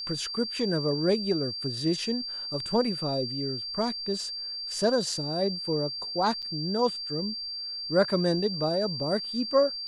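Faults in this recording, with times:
tone 4700 Hz -33 dBFS
6.42–6.43 gap 6.7 ms

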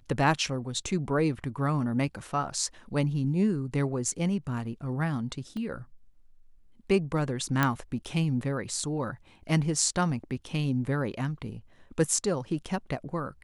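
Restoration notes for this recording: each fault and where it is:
5.57 pop -27 dBFS
7.63 pop -10 dBFS

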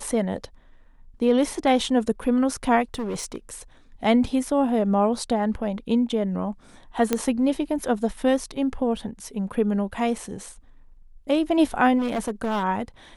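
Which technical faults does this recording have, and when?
2.94–3.53 clipped -25 dBFS
7.13 pop -7 dBFS
11.98–12.64 clipped -21.5 dBFS

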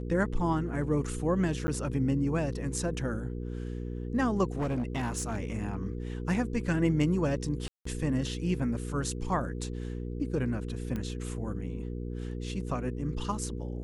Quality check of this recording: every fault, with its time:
hum 60 Hz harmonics 8 -36 dBFS
1.67–1.68 gap 10 ms
4.44–5.87 clipped -26.5 dBFS
7.68–7.85 gap 0.174 s
10.96 pop -22 dBFS

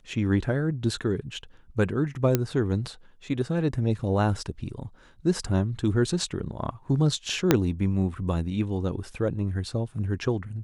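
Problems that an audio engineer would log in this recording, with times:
2.35 pop -7 dBFS
7.51 pop -3 dBFS

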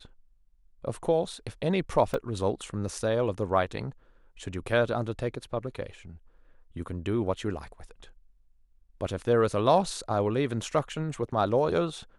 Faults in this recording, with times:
2.14 gap 2.2 ms

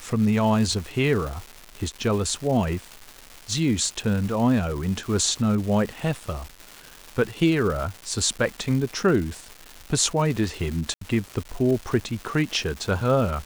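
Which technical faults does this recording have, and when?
crackle 480/s -31 dBFS
10.94–11.01 gap 73 ms

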